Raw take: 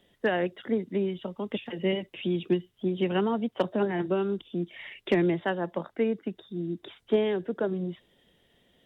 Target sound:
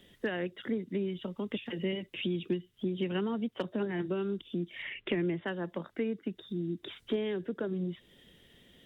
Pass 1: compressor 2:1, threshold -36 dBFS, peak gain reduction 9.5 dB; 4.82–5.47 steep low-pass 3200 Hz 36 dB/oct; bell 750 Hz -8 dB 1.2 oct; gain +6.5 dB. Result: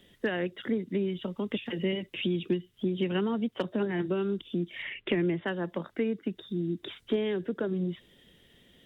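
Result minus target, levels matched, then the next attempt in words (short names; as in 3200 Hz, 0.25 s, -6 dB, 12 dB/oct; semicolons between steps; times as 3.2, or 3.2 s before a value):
compressor: peak gain reduction -3.5 dB
compressor 2:1, threshold -43 dBFS, peak gain reduction 13 dB; 4.82–5.47 steep low-pass 3200 Hz 36 dB/oct; bell 750 Hz -8 dB 1.2 oct; gain +6.5 dB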